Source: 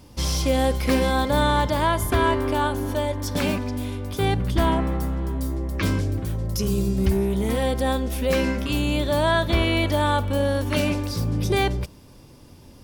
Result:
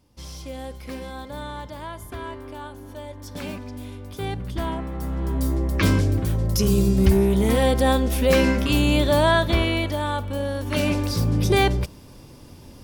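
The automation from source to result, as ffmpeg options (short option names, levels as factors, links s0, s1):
-af "volume=3.76,afade=t=in:st=2.83:d=1.04:silence=0.446684,afade=t=in:st=4.92:d=0.56:silence=0.281838,afade=t=out:st=9.04:d=0.93:silence=0.375837,afade=t=in:st=10.59:d=0.46:silence=0.421697"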